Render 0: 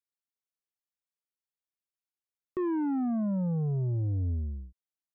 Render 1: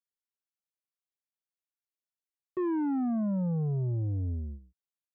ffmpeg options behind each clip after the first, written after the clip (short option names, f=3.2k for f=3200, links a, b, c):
-af "agate=range=-8dB:threshold=-37dB:ratio=16:detection=peak,highpass=81"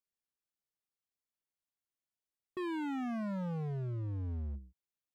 -af "lowshelf=f=490:g=6,volume=32.5dB,asoftclip=hard,volume=-32.5dB,volume=-3.5dB"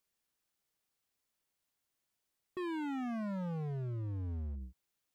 -af "alimiter=level_in=22dB:limit=-24dB:level=0:latency=1,volume=-22dB,volume=9dB"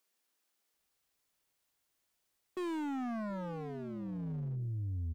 -filter_complex "[0:a]acrossover=split=190[a][b];[a]adelay=730[c];[c][b]amix=inputs=2:normalize=0,aeval=exprs='0.0299*(cos(1*acos(clip(val(0)/0.0299,-1,1)))-cos(1*PI/2))+0.00237*(cos(2*acos(clip(val(0)/0.0299,-1,1)))-cos(2*PI/2))+0.00237*(cos(5*acos(clip(val(0)/0.0299,-1,1)))-cos(5*PI/2))':c=same,volume=1.5dB"